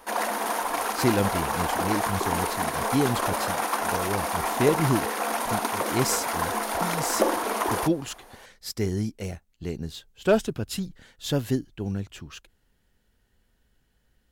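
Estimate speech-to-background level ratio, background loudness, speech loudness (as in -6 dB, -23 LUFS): -2.5 dB, -27.0 LUFS, -29.5 LUFS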